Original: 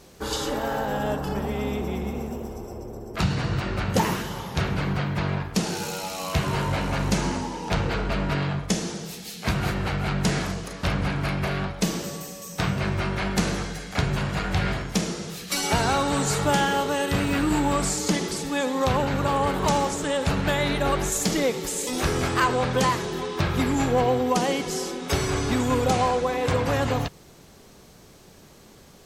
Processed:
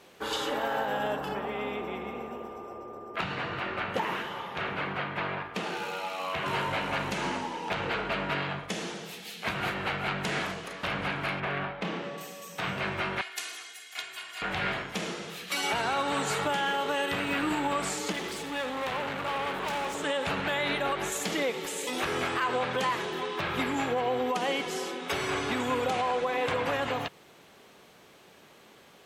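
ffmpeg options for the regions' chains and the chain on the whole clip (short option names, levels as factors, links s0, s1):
-filter_complex "[0:a]asettb=1/sr,asplit=3[s0][s1][s2];[s0]atrim=end=1.354[s3];[s1]atrim=start=1.35:end=6.46,asetpts=PTS-STARTPTS,afade=t=in:d=0.004:c=qsin,afade=t=out:st=5.106:d=0.004:c=qsin,bass=f=250:g=-4,treble=f=4000:g=-9,aeval=exprs='val(0)+0.00562*sin(2*PI*1200*n/s)':c=same[s4];[s2]atrim=start=6.456[s5];[s3][s4]acrossfade=d=0.004:c1=hsin:c2=qsin[s6];[s6][s5]acrossfade=d=0.004:c1=qsin:c2=hsin,asettb=1/sr,asplit=3[s7][s8][s9];[s7]atrim=end=11.404[s10];[s8]atrim=start=11.4:end=12.18,asetpts=PTS-STARTPTS,afade=t=in:d=0.004:c=qsin,afade=t=out:st=0.776:d=0.004:c=qsin,lowpass=2600,asoftclip=type=hard:threshold=0.0944,asplit=2[s11][s12];[s12]adelay=28,volume=0.398[s13];[s11][s13]amix=inputs=2:normalize=0,atrim=end_sample=34398[s14];[s9]atrim=start=12.176[s15];[s10][s14]acrossfade=d=0.004:c1=hsin:c2=qsin[s16];[s16][s15]acrossfade=d=0.004:c1=qsin:c2=hsin,asettb=1/sr,asplit=3[s17][s18][s19];[s17]atrim=end=13.214[s20];[s18]atrim=start=13.21:end=14.42,asetpts=PTS-STARTPTS,afade=t=in:d=0.004:c=qsin,afade=t=out:st=1.206:d=0.004:c=qsin,aderivative,aecho=1:1:2.8:0.97,atrim=end_sample=53361[s21];[s19]atrim=start=14.416[s22];[s20][s21]acrossfade=d=0.004:c1=hsin:c2=qsin[s23];[s23][s22]acrossfade=d=0.004:c1=qsin:c2=hsin,asettb=1/sr,asplit=3[s24][s25][s26];[s24]atrim=end=18.124[s27];[s25]atrim=start=18.12:end=19.95,asetpts=PTS-STARTPTS,afade=t=in:d=0.004:c=qsin,afade=t=out:st=1.826:d=0.004:c=qsin,volume=23.7,asoftclip=hard,volume=0.0422,aeval=exprs='val(0)+0.0112*(sin(2*PI*50*n/s)+sin(2*PI*2*50*n/s)/2+sin(2*PI*3*50*n/s)/3+sin(2*PI*4*50*n/s)/4+sin(2*PI*5*50*n/s)/5)':c=same[s28];[s26]atrim=start=19.946[s29];[s27][s28]acrossfade=d=0.004:c1=hsin:c2=qsin[s30];[s30][s29]acrossfade=d=0.004:c1=qsin:c2=hsin,highpass=f=550:p=1,highshelf=f=4000:t=q:w=1.5:g=-7,alimiter=limit=0.106:level=0:latency=1:release=105"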